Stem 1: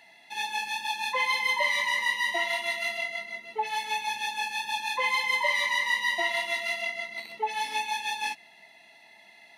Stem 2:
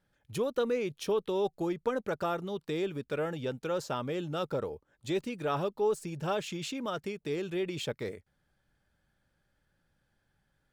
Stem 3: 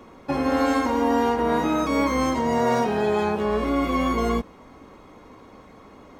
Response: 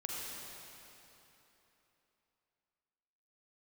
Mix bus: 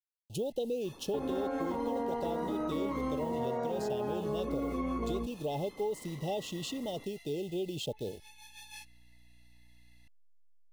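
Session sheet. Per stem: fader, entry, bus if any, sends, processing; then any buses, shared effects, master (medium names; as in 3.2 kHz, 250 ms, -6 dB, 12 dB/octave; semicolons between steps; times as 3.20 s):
-6.5 dB, 0.50 s, no send, pre-emphasis filter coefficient 0.9; hum 60 Hz, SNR 17 dB; overload inside the chain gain 31.5 dB; auto duck -12 dB, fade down 0.90 s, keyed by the second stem
0.0 dB, 0.00 s, no send, send-on-delta sampling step -48 dBFS; Chebyshev band-stop 850–2700 Hz, order 5
-8.0 dB, 0.85 s, no send, resonances exaggerated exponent 1.5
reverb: none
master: compression, threshold -30 dBFS, peak gain reduction 7.5 dB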